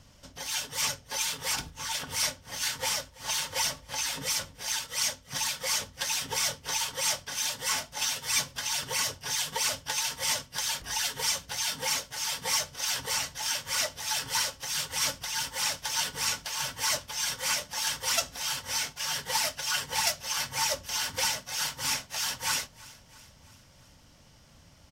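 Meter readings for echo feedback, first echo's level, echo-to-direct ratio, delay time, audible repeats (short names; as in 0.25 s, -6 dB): 58%, -21.5 dB, -20.0 dB, 0.331 s, 3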